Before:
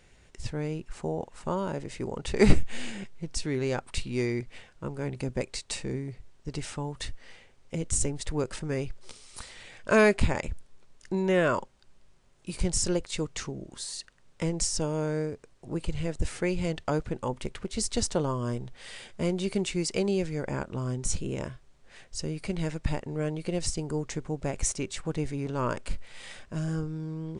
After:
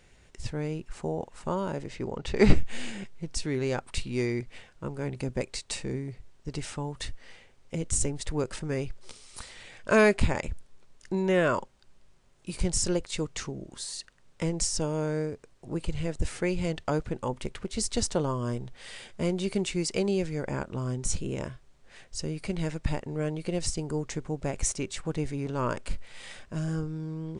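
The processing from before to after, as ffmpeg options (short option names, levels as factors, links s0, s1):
-filter_complex "[0:a]asettb=1/sr,asplit=3[s0][s1][s2];[s0]atrim=end=1.884[s3];[s1]atrim=start=1.88:end=2.64,asetpts=PTS-STARTPTS,afade=t=in:d=0.004:c=qsin,afade=t=out:st=0.756:d=0.004:c=qsin,lowpass=5900[s4];[s2]atrim=start=2.636[s5];[s3][s4]acrossfade=d=0.004:c1=hsin:c2=qsin[s6];[s6][s5]acrossfade=d=0.004:c1=qsin:c2=hsin"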